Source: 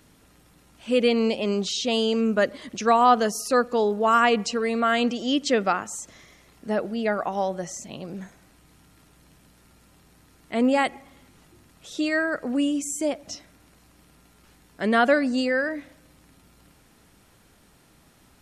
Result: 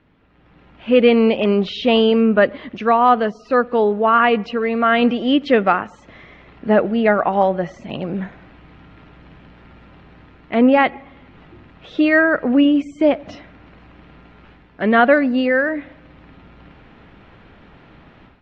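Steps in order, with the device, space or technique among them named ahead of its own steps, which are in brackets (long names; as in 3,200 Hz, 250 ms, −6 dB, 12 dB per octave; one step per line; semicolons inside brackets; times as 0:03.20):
action camera in a waterproof case (low-pass filter 2,900 Hz 24 dB per octave; automatic gain control gain up to 13.5 dB; level −1 dB; AAC 48 kbit/s 44,100 Hz)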